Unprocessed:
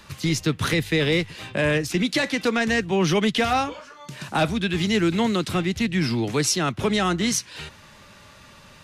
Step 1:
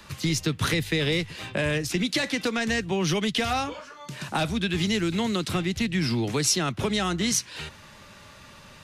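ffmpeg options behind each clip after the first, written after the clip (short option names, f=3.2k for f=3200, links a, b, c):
-filter_complex "[0:a]acrossover=split=130|3000[a][b][c];[b]acompressor=threshold=-24dB:ratio=6[d];[a][d][c]amix=inputs=3:normalize=0"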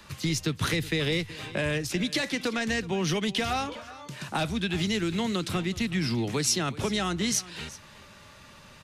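-af "aecho=1:1:372:0.126,volume=-2.5dB"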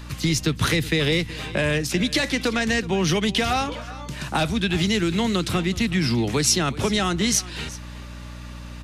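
-af "aeval=exprs='val(0)+0.00794*(sin(2*PI*60*n/s)+sin(2*PI*2*60*n/s)/2+sin(2*PI*3*60*n/s)/3+sin(2*PI*4*60*n/s)/4+sin(2*PI*5*60*n/s)/5)':c=same,volume=6dB"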